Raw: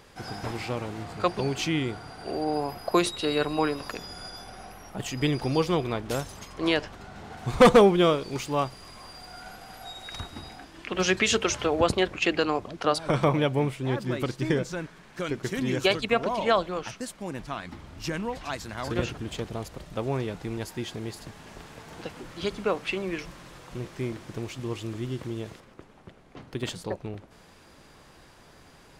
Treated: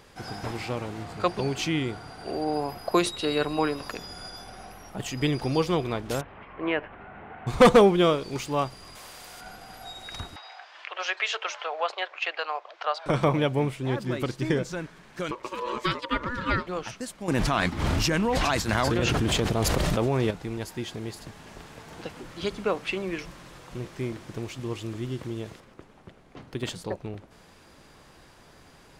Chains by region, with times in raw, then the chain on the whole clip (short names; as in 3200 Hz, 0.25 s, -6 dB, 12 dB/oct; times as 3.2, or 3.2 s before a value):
6.21–7.47 low shelf 260 Hz -8.5 dB + upward compressor, threshold -38 dBFS + steep low-pass 2600 Hz
8.95–9.41 resonant low shelf 390 Hz -6.5 dB, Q 1.5 + spectral compressor 2:1
10.36–13.06 inverse Chebyshev high-pass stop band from 240 Hz, stop band 50 dB + air absorption 180 m + mismatched tape noise reduction encoder only
15.31–16.67 Chebyshev high-pass 160 Hz, order 3 + high shelf 4800 Hz -8.5 dB + ring modulator 740 Hz
17.28–20.31 tremolo 1.1 Hz, depth 98% + fast leveller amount 100%
whole clip: dry